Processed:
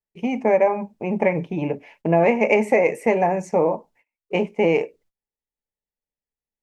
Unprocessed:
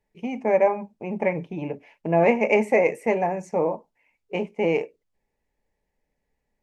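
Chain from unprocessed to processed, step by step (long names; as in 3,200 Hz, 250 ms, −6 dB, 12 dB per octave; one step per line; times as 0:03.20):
downward compressor 3 to 1, threshold −20 dBFS, peak gain reduction 6 dB
noise gate −60 dBFS, range −26 dB
level +6 dB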